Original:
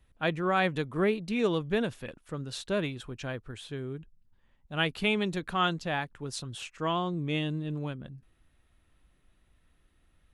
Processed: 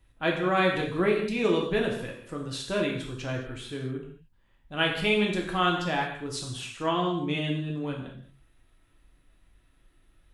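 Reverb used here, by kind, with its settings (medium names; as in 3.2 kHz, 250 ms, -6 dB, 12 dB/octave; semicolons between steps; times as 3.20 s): gated-style reverb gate 260 ms falling, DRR -1 dB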